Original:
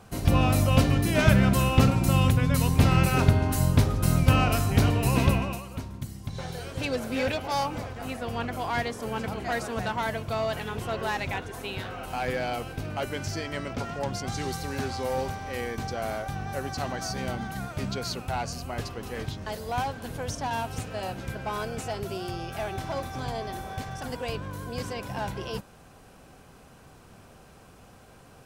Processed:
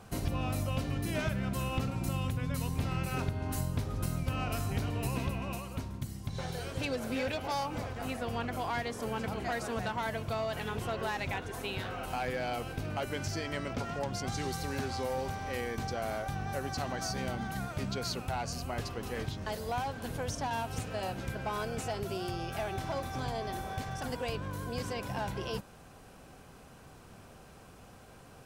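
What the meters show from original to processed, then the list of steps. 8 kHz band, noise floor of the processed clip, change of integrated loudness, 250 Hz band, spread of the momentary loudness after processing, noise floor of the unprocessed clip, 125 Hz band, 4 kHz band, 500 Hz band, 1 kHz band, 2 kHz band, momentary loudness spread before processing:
−6.0 dB, −54 dBFS, −8.0 dB, −8.5 dB, 6 LU, −52 dBFS, −10.0 dB, −6.0 dB, −5.5 dB, −5.5 dB, −6.5 dB, 14 LU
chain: downward compressor 5 to 1, threshold −29 dBFS, peak gain reduction 15 dB
level −1.5 dB

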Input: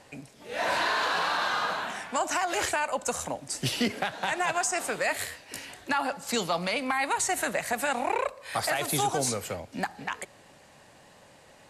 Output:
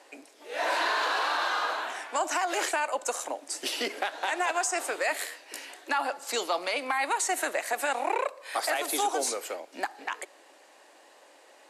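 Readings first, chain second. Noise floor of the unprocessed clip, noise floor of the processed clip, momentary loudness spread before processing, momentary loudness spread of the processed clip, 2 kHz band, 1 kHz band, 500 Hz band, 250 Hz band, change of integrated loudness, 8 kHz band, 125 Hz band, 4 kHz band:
−55 dBFS, −56 dBFS, 10 LU, 10 LU, −0.5 dB, 0.0 dB, −0.5 dB, −6.5 dB, −1.0 dB, −1.0 dB, below −30 dB, −1.0 dB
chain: Chebyshev high-pass filter 310 Hz, order 4

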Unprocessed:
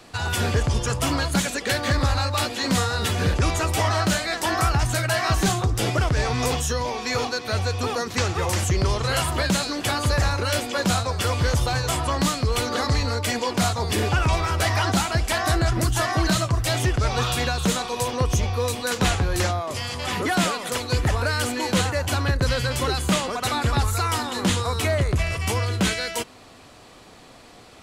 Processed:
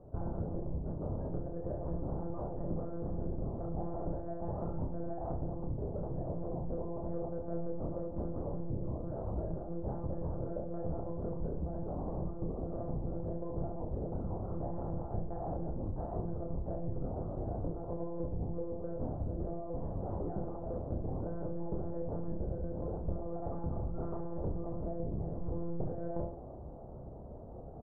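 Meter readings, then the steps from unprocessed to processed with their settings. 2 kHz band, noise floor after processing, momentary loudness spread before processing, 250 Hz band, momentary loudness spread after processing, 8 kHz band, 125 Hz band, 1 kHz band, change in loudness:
below −40 dB, −46 dBFS, 3 LU, −12.0 dB, 2 LU, below −40 dB, −15.0 dB, −21.0 dB, −16.5 dB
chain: one-pitch LPC vocoder at 8 kHz 170 Hz
inverse Chebyshev low-pass filter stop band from 2,200 Hz, stop band 60 dB
low-shelf EQ 480 Hz −9 dB
downward compressor, threshold −37 dBFS, peak gain reduction 13.5 dB
parametric band 73 Hz +7 dB 2.6 octaves
reverse bouncing-ball delay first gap 30 ms, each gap 1.25×, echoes 5
speech leveller 0.5 s
level −1 dB

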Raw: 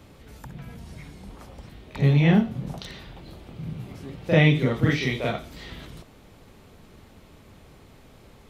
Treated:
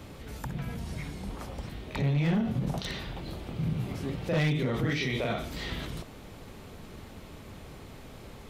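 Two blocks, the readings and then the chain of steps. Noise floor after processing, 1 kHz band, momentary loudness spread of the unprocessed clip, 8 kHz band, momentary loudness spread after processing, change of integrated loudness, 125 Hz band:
−47 dBFS, −3.5 dB, 23 LU, can't be measured, 20 LU, −9.5 dB, −6.5 dB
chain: hard clipping −14.5 dBFS, distortion −14 dB
brickwall limiter −26.5 dBFS, peak gain reduction 12 dB
level +4.5 dB

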